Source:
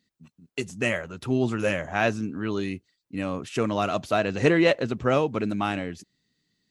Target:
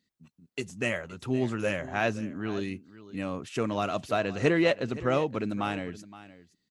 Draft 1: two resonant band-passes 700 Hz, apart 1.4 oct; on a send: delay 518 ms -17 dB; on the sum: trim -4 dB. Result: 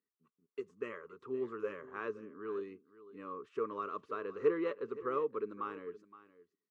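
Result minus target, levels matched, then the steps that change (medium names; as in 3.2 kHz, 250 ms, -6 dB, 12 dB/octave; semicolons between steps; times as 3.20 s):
500 Hz band +2.5 dB
remove: two resonant band-passes 700 Hz, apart 1.4 oct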